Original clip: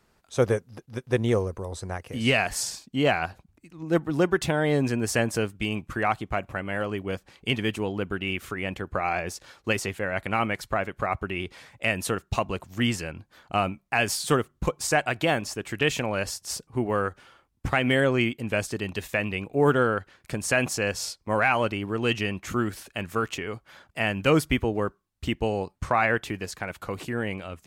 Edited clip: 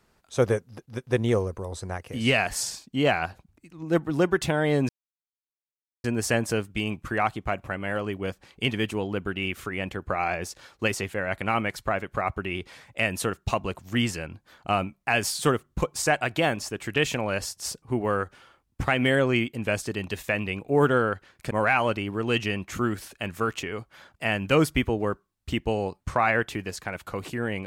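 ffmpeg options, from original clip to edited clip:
-filter_complex "[0:a]asplit=3[a][b][c];[a]atrim=end=4.89,asetpts=PTS-STARTPTS,afade=t=out:st=4.886:d=0.004:c=hsin,apad=pad_dur=1.15[d];[b]atrim=start=4.89:end=20.362,asetpts=PTS-STARTPTS,afade=t=in:d=0.004:c=hsin[e];[c]atrim=start=21.258[f];[d][e]concat=n=2:v=0:a=1[g];[g][f]acrossfade=d=0.004:c1=hsin:c2=hsin"

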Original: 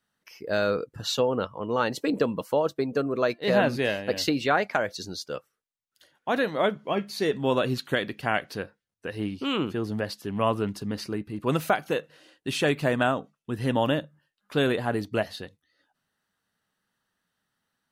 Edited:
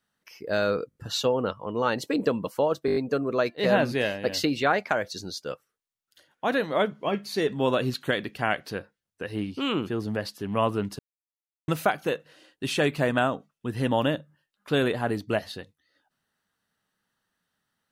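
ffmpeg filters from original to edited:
-filter_complex "[0:a]asplit=11[a][b][c][d][e][f][g][h][i][j][k];[a]atrim=end=0.912[l];[b]atrim=start=0.888:end=0.912[m];[c]atrim=start=0.888:end=0.912[n];[d]atrim=start=0.888:end=2.822[o];[e]atrim=start=2.798:end=2.822[p];[f]atrim=start=2.798:end=2.822[q];[g]atrim=start=2.798:end=2.822[r];[h]atrim=start=2.798:end=2.822[s];[i]atrim=start=2.798:end=10.83,asetpts=PTS-STARTPTS,afade=t=out:st=8.028:d=0.004:c=hsin[t];[j]atrim=start=10.83:end=11.52,asetpts=PTS-STARTPTS,volume=0[u];[k]atrim=start=11.52,asetpts=PTS-STARTPTS,afade=t=in:d=0.004:c=hsin[v];[l][m]acrossfade=d=0.004:c1=hsin:c2=hsin[w];[w][n]acrossfade=d=0.004:c1=hsin:c2=hsin[x];[x][o]acrossfade=d=0.004:c1=hsin:c2=hsin[y];[y][p]acrossfade=d=0.004:c1=hsin:c2=hsin[z];[z][q]acrossfade=d=0.004:c1=hsin:c2=hsin[aa];[aa][r]acrossfade=d=0.004:c1=hsin:c2=hsin[ab];[ab][s]acrossfade=d=0.004:c1=hsin:c2=hsin[ac];[t][u][v]concat=n=3:v=0:a=1[ad];[ac][ad]acrossfade=d=0.004:c1=hsin:c2=hsin"

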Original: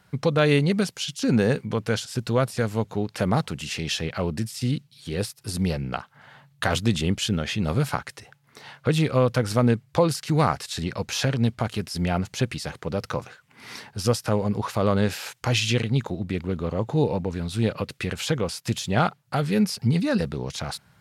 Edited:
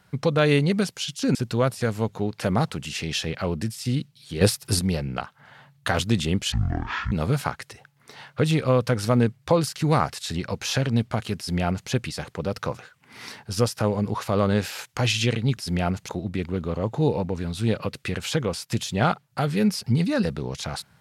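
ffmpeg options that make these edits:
-filter_complex "[0:a]asplit=8[a][b][c][d][e][f][g][h];[a]atrim=end=1.352[i];[b]atrim=start=2.108:end=5.172[j];[c]atrim=start=5.168:end=5.552,asetpts=PTS-STARTPTS,volume=9dB[k];[d]atrim=start=5.548:end=7.284[l];[e]atrim=start=7.28:end=7.59,asetpts=PTS-STARTPTS,asetrate=22932,aresample=44100,atrim=end_sample=26290,asetpts=PTS-STARTPTS[m];[f]atrim=start=7.586:end=16.042[n];[g]atrim=start=11.848:end=12.372[o];[h]atrim=start=16.038[p];[i][j]acrossfade=d=0.004:c1=hsin:c2=hsin[q];[q][k]acrossfade=d=0.004:c1=hsin:c2=hsin[r];[r][l]acrossfade=d=0.004:c1=hsin:c2=hsin[s];[s][m]acrossfade=d=0.004:c1=hsin:c2=hsin[t];[t][n]acrossfade=d=0.004:c1=hsin:c2=hsin[u];[u][o]acrossfade=d=0.004:c1=hsin:c2=hsin[v];[v][p]acrossfade=d=0.004:c1=hsin:c2=hsin"

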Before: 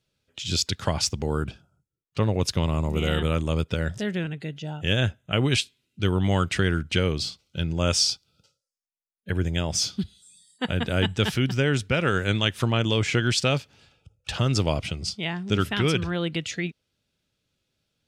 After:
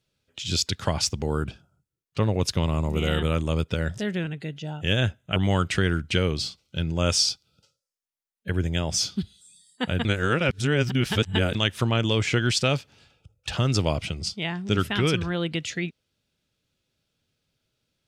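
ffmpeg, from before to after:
-filter_complex "[0:a]asplit=4[a][b][c][d];[a]atrim=end=5.362[e];[b]atrim=start=6.168:end=10.862[f];[c]atrim=start=10.858:end=12.362,asetpts=PTS-STARTPTS,areverse[g];[d]atrim=start=12.358[h];[e][f]acrossfade=d=0.004:c1=hsin:c2=hsin[i];[i][g]acrossfade=d=0.004:c1=hsin:c2=hsin[j];[j][h]acrossfade=d=0.004:c1=hsin:c2=hsin"

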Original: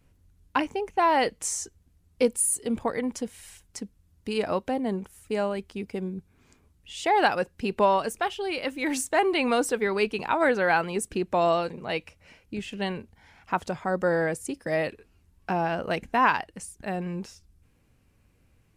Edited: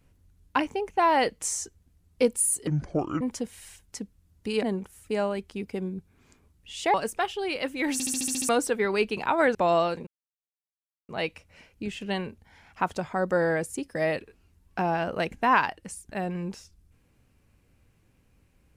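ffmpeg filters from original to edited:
-filter_complex "[0:a]asplit=15[a][b][c][d][e][f][g][h][i][j][k][l][m][n][o];[a]atrim=end=2.674[p];[b]atrim=start=2.67:end=3.02,asetpts=PTS-STARTPTS,asetrate=28665,aresample=44100,atrim=end_sample=23746,asetpts=PTS-STARTPTS[q];[c]atrim=start=3.016:end=4.442[r];[d]atrim=start=4.828:end=7.142[s];[e]atrim=start=7.958:end=9.022[t];[f]atrim=start=8.948:end=9.022[u];[g]atrim=start=8.948:end=9.022[v];[h]atrim=start=8.948:end=9.022[w];[i]atrim=start=8.948:end=9.022[x];[j]atrim=start=8.948:end=9.022[y];[k]atrim=start=8.948:end=9.022[z];[l]atrim=start=8.948:end=9.022[aa];[m]atrim=start=9.508:end=10.572[ab];[n]atrim=start=11.278:end=11.8,asetpts=PTS-STARTPTS,afade=t=out:st=0.518:d=0.004:c=hsin,apad=pad_dur=1.02[ac];[o]atrim=start=11.8,asetpts=PTS-STARTPTS,afade=t=in:d=0.004:c=hsin[ad];[p][q]acrossfade=d=0.004:c1=hsin:c2=hsin[ae];[ae][r]acrossfade=d=0.004:c1=hsin:c2=hsin[af];[af][s]acrossfade=d=0.004:c1=hsin:c2=hsin[ag];[ag][t]acrossfade=d=0.004:c1=hsin:c2=hsin[ah];[ah][u]acrossfade=d=0.004:c1=hsin:c2=hsin[ai];[ai][v]acrossfade=d=0.004:c1=hsin:c2=hsin[aj];[aj][w]acrossfade=d=0.004:c1=hsin:c2=hsin[ak];[ak][x]acrossfade=d=0.004:c1=hsin:c2=hsin[al];[al][y]acrossfade=d=0.004:c1=hsin:c2=hsin[am];[am][z]acrossfade=d=0.004:c1=hsin:c2=hsin[an];[an][aa]acrossfade=d=0.004:c1=hsin:c2=hsin[ao];[ao][ab]acrossfade=d=0.004:c1=hsin:c2=hsin[ap];[ac][ad]concat=n=2:v=0:a=1[aq];[ap][aq]acrossfade=d=0.004:c1=hsin:c2=hsin"

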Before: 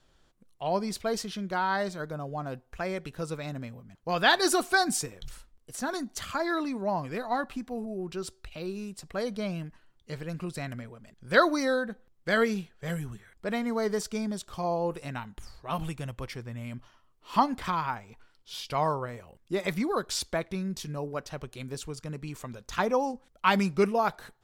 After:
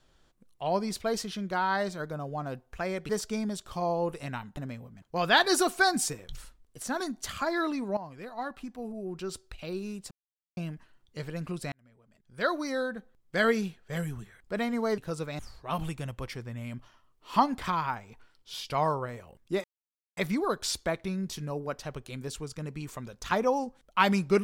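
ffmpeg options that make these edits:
-filter_complex "[0:a]asplit=10[a][b][c][d][e][f][g][h][i][j];[a]atrim=end=3.092[k];[b]atrim=start=13.908:end=15.392[l];[c]atrim=start=3.498:end=6.9,asetpts=PTS-STARTPTS,afade=t=out:st=3.398:d=0.004:c=hsin:silence=0.237137[m];[d]atrim=start=6.9:end=9.04,asetpts=PTS-STARTPTS,afade=t=in:d=1.49:silence=0.237137,afade=t=out:st=2.136:d=0.004:c=hsin[n];[e]atrim=start=9.04:end=9.5,asetpts=PTS-STARTPTS,volume=0[o];[f]atrim=start=9.5:end=10.65,asetpts=PTS-STARTPTS,afade=t=in:d=0.004:c=hsin,afade=t=out:st=1.146:d=0.004:c=hsin[p];[g]atrim=start=10.65:end=13.912,asetpts=PTS-STARTPTS,afade=t=in:d=1.71[q];[h]atrim=start=3.088:end=3.502[r];[i]atrim=start=15.388:end=19.64,asetpts=PTS-STARTPTS,afade=t=out:st=4.248:d=0.004:c=hsin,apad=pad_dur=0.53[s];[j]atrim=start=19.64,asetpts=PTS-STARTPTS,afade=t=in:d=0.004:c=hsin[t];[k][l]acrossfade=d=0.004:c1=hsin:c2=hsin[u];[m][n][o][p][q]concat=n=5:v=0:a=1[v];[u][v]acrossfade=d=0.004:c1=hsin:c2=hsin[w];[w][r]acrossfade=d=0.004:c1=hsin:c2=hsin[x];[s][t]concat=n=2:v=0:a=1[y];[x][y]acrossfade=d=0.004:c1=hsin:c2=hsin"

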